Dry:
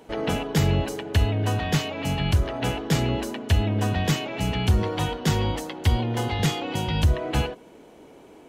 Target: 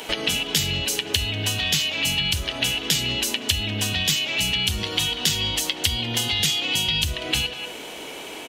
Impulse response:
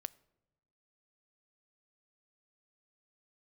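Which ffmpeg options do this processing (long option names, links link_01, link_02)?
-filter_complex "[0:a]lowshelf=frequency=430:gain=-11,asplit=2[link_01][link_02];[link_02]adelay=190,highpass=300,lowpass=3400,asoftclip=type=hard:threshold=-22.5dB,volume=-16dB[link_03];[link_01][link_03]amix=inputs=2:normalize=0,acrossover=split=300|3000[link_04][link_05][link_06];[link_05]acompressor=threshold=-47dB:ratio=2.5[link_07];[link_04][link_07][link_06]amix=inputs=3:normalize=0,equalizer=frequency=2900:width_type=o:width=1.2:gain=10,acompressor=threshold=-39dB:ratio=4,asplit=2[link_08][link_09];[1:a]atrim=start_sample=2205,highshelf=frequency=4100:gain=11[link_10];[link_09][link_10]afir=irnorm=-1:irlink=0,volume=16.5dB[link_11];[link_08][link_11]amix=inputs=2:normalize=0,volume=-1dB"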